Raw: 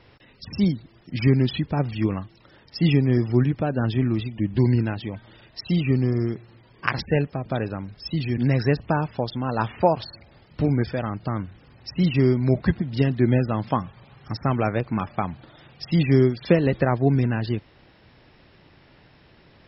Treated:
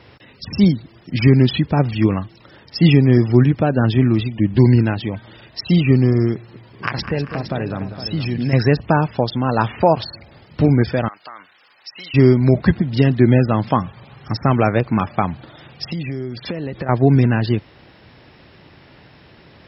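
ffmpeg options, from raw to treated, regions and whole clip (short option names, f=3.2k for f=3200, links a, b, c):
-filter_complex "[0:a]asettb=1/sr,asplit=3[a][b][c];[a]atrim=end=6.344[d];[b]atrim=start=6.34:end=8.53,asetpts=PTS-STARTPTS,afade=t=in:d=0.004:c=qsin,afade=t=out:st=2.186:d=0.004:c=qsin,acompressor=threshold=-27dB:ratio=2.5:attack=3.2:release=140:knee=1:detection=peak,aecho=1:1:200|392|463:0.282|0.112|0.299,atrim=end_sample=96579[e];[c]atrim=start=8.526[f];[d][e]acrossfade=d=0.004:c1=hsin:c2=qsin[g];[g][f]acrossfade=d=0.004:c1=qsin:c2=hsin,asettb=1/sr,asplit=3[h][i][j];[h]atrim=end=11.084[k];[i]atrim=start=11.08:end=12.14,asetpts=PTS-STARTPTS,afade=t=in:d=0.004:c=qsin,afade=t=out:st=1.056:d=0.004:c=qsin,highpass=1.1k,acompressor=threshold=-39dB:ratio=4:attack=3.2:release=140:knee=1:detection=peak[l];[j]atrim=start=12.136[m];[k][l]acrossfade=d=0.004:c1=hsin:c2=qsin[n];[n][m]acrossfade=d=0.004:c1=qsin:c2=hsin,asettb=1/sr,asplit=3[o][p][q];[o]atrim=end=15.924[r];[p]atrim=start=15.92:end=16.89,asetpts=PTS-STARTPTS,afade=t=in:d=0.004:c=qsin,afade=t=out:st=0.966:d=0.004:c=qsin,agate=range=-33dB:threshold=-39dB:ratio=3:release=100:detection=peak,acompressor=threshold=-29dB:ratio=12:attack=3.2:release=140:knee=1:detection=peak[s];[q]atrim=start=16.886[t];[r][s]acrossfade=d=0.004:c1=hsin:c2=qsin[u];[u][t]acrossfade=d=0.004:c1=qsin:c2=hsin,highpass=55,alimiter=level_in=8.5dB:limit=-1dB:release=50:level=0:latency=1,volume=-1dB"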